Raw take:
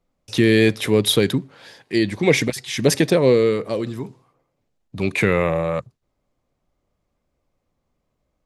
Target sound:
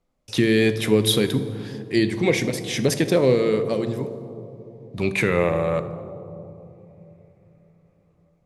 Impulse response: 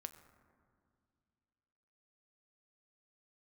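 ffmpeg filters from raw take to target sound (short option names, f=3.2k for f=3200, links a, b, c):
-filter_complex "[0:a]alimiter=limit=-6.5dB:level=0:latency=1:release=375[a];[1:a]atrim=start_sample=2205,asetrate=24696,aresample=44100[b];[a][b]afir=irnorm=-1:irlink=0,volume=1dB"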